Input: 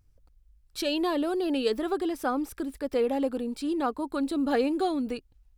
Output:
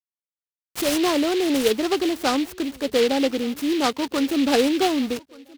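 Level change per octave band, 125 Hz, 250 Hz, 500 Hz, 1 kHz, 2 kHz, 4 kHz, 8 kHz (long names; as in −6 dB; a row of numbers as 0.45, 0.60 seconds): can't be measured, +6.5 dB, +6.0 dB, +5.5 dB, +9.5 dB, +11.0 dB, +15.0 dB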